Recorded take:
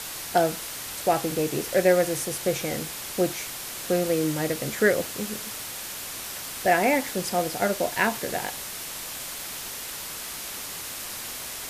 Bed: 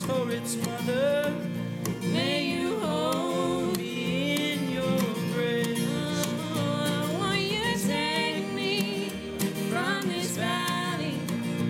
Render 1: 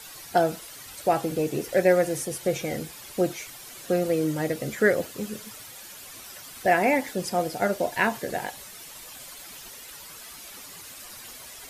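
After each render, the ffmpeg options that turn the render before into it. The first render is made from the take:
-af "afftdn=nr=11:nf=-36"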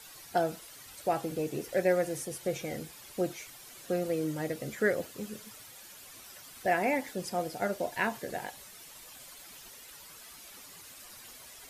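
-af "volume=0.447"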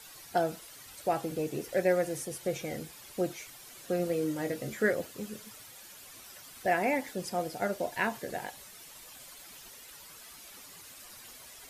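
-filter_complex "[0:a]asettb=1/sr,asplit=3[s0][s1][s2];[s0]atrim=end=3.974[s3];[s1]atrim=start=3.97:end=4.91,asetpts=PTS-STARTPTS,afade=t=in:d=0.004:c=qsin,afade=t=out:st=0.936:d=0.004:c=qsin,asplit=2[s4][s5];[s5]adelay=23,volume=0.398[s6];[s4][s6]amix=inputs=2:normalize=0,atrim=end_sample=41454[s7];[s2]atrim=start=4.906[s8];[s3][s7]acrossfade=d=0.004:c1=hsin:c2=qsin[s9];[s9][s8]acrossfade=d=0.004:c1=qsin:c2=hsin"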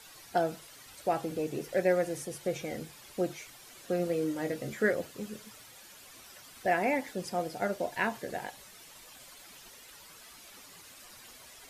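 -af "highshelf=f=8700:g=-6,bandreject=f=50:t=h:w=6,bandreject=f=100:t=h:w=6,bandreject=f=150:t=h:w=6"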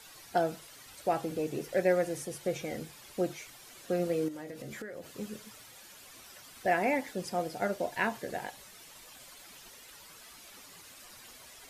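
-filter_complex "[0:a]asettb=1/sr,asplit=3[s0][s1][s2];[s0]atrim=end=4.284[s3];[s1]atrim=start=4.28:end=5.1,asetpts=PTS-STARTPTS,afade=t=in:d=0.004:c=qsin,afade=t=out:st=0.816:d=0.004:c=qsin,acompressor=threshold=0.0126:ratio=12:attack=3.2:release=140:knee=1:detection=peak[s4];[s2]atrim=start=5.096[s5];[s3][s4]acrossfade=d=0.004:c1=hsin:c2=qsin[s6];[s6][s5]acrossfade=d=0.004:c1=qsin:c2=hsin"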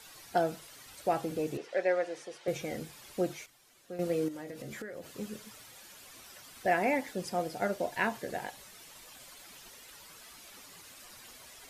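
-filter_complex "[0:a]asettb=1/sr,asplit=3[s0][s1][s2];[s0]atrim=end=1.574[s3];[s1]atrim=start=1.57:end=2.48,asetpts=PTS-STARTPTS,afade=t=in:d=0.004:c=qsin,afade=t=out:st=0.906:d=0.004:c=qsin,highpass=460,lowpass=4400[s4];[s2]atrim=start=2.476[s5];[s3][s4]acrossfade=d=0.004:c1=hsin:c2=qsin[s6];[s6][s5]acrossfade=d=0.004:c1=qsin:c2=hsin,asplit=3[s7][s8][s9];[s7]atrim=end=3.46,asetpts=PTS-STARTPTS,afade=t=out:st=3.31:d=0.15:c=log:silence=0.266073[s10];[s8]atrim=start=3.46:end=3.99,asetpts=PTS-STARTPTS,volume=0.266[s11];[s9]atrim=start=3.99,asetpts=PTS-STARTPTS,afade=t=in:d=0.15:c=log:silence=0.266073[s12];[s10][s11][s12]concat=n=3:v=0:a=1"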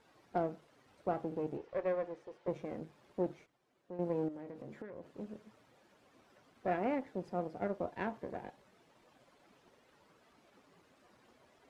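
-af "aeval=exprs='if(lt(val(0),0),0.251*val(0),val(0))':c=same,bandpass=f=310:t=q:w=0.55:csg=0"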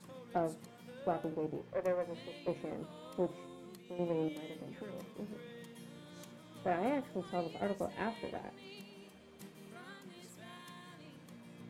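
-filter_complex "[1:a]volume=0.0596[s0];[0:a][s0]amix=inputs=2:normalize=0"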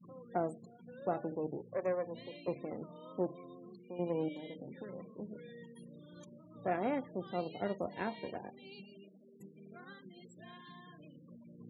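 -af "highpass=85,afftfilt=real='re*gte(hypot(re,im),0.00398)':imag='im*gte(hypot(re,im),0.00398)':win_size=1024:overlap=0.75"

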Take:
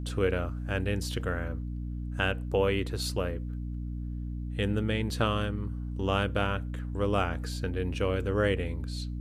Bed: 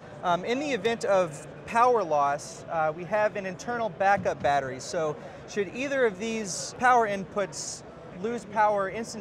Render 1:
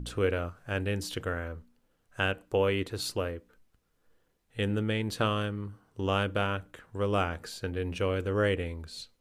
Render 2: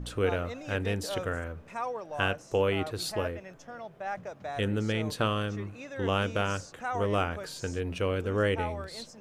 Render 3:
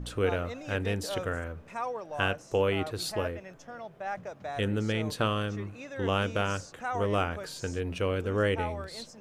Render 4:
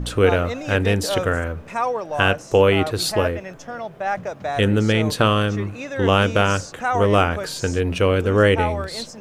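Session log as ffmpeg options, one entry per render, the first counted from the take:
-af "bandreject=f=60:t=h:w=4,bandreject=f=120:t=h:w=4,bandreject=f=180:t=h:w=4,bandreject=f=240:t=h:w=4,bandreject=f=300:t=h:w=4"
-filter_complex "[1:a]volume=0.224[s0];[0:a][s0]amix=inputs=2:normalize=0"
-af anull
-af "volume=3.76,alimiter=limit=0.794:level=0:latency=1"

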